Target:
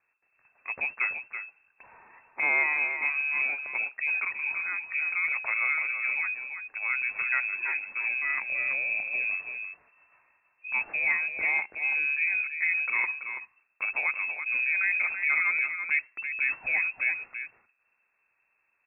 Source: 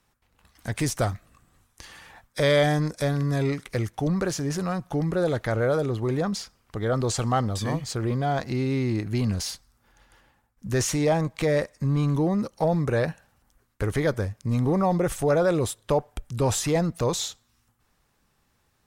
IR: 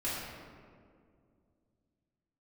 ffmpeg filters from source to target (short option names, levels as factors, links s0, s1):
-filter_complex "[0:a]asettb=1/sr,asplit=3[s0][s1][s2];[s0]atrim=end=14.014[s3];[s1]atrim=start=14.01:end=15.65,asetpts=PTS-STARTPTS,afade=t=in:d=0.004:c=qsin,afade=t=out:st=1.636:d=0.004:c=qsin,afreqshift=15[s4];[s2]atrim=start=15.646[s5];[s3][s4]acrossfade=d=0.004:c1=hsin:c2=qsin[s6];[s6][s5]acrossfade=d=0.004:c1=qsin:c2=hsin,aecho=1:1:332:0.398,lowpass=f=2300:t=q:w=0.5098,lowpass=f=2300:t=q:w=0.6013,lowpass=f=2300:t=q:w=0.9,lowpass=f=2300:t=q:w=2.563,afreqshift=-2700,volume=0.562"